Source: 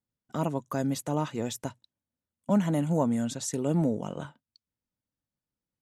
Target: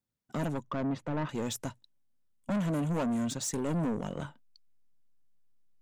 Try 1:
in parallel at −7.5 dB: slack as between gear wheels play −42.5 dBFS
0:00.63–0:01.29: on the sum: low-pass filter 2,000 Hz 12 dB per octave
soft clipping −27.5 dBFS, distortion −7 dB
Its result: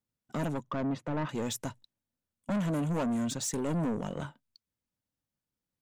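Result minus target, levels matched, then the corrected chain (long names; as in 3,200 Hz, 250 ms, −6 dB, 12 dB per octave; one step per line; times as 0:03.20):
slack as between gear wheels: distortion −10 dB
in parallel at −7.5 dB: slack as between gear wheels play −32 dBFS
0:00.63–0:01.29: on the sum: low-pass filter 2,000 Hz 12 dB per octave
soft clipping −27.5 dBFS, distortion −7 dB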